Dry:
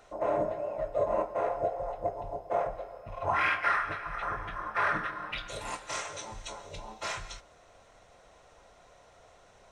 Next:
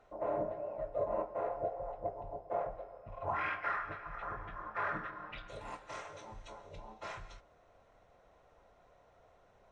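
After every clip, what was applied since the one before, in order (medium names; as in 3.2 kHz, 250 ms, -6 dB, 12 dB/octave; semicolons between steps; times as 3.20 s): low-pass 1.4 kHz 6 dB/octave; trim -5.5 dB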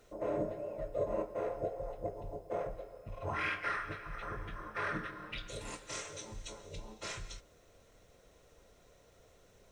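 FFT filter 470 Hz 0 dB, 760 Hz -12 dB, 7.8 kHz +12 dB; trim +5 dB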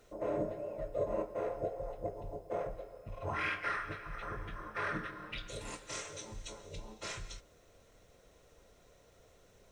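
no audible change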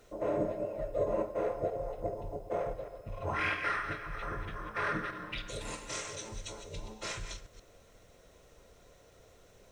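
chunks repeated in reverse 131 ms, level -9 dB; trim +3 dB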